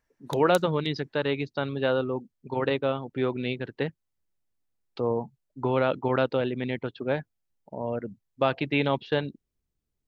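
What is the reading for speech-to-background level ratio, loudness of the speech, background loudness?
15.5 dB, −28.0 LKFS, −43.5 LKFS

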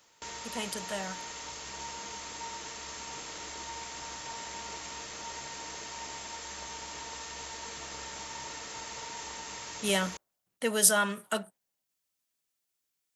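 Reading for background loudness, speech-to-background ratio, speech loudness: −40.0 LKFS, 11.0 dB, −29.0 LKFS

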